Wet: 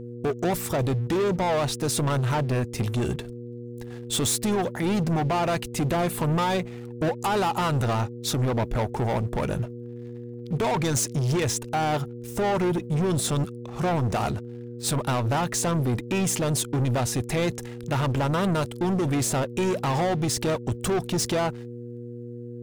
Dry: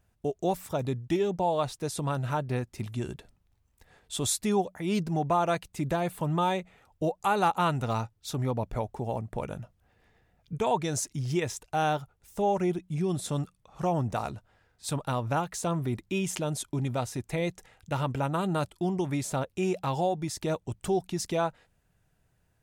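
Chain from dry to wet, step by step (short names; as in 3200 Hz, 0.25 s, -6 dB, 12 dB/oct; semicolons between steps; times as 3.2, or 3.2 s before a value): limiter -21.5 dBFS, peak gain reduction 7 dB; sample leveller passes 3; buzz 120 Hz, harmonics 4, -39 dBFS -2 dB/oct; gain +1.5 dB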